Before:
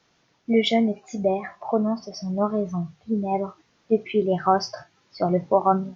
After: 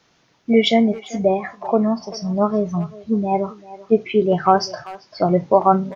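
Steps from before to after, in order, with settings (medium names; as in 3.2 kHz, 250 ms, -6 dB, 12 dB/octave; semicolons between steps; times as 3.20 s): speakerphone echo 390 ms, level -17 dB; trim +5 dB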